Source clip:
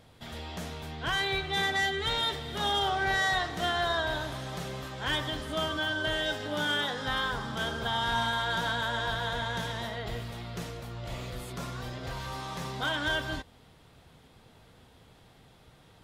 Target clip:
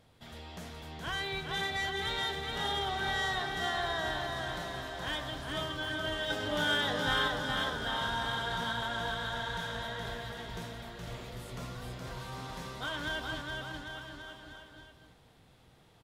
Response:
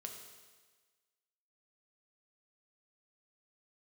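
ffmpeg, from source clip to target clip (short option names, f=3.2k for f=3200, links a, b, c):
-filter_complex "[0:a]asettb=1/sr,asplit=3[a][b][c];[a]atrim=end=6.304[d];[b]atrim=start=6.3:end=7.28,asetpts=PTS-STARTPTS,afade=t=in:d=0.004:c=qsin,afade=t=out:st=0.976:d=0.004:c=qsin,acontrast=39[e];[c]atrim=start=7.276[f];[d][e]acrossfade=d=0.004:c1=hsin:c2=qsin[g];[g][f]acrossfade=d=0.004:c1=qsin:c2=hsin,aecho=1:1:420|798|1138|1444|1720:0.631|0.398|0.251|0.158|0.1,volume=-6.5dB"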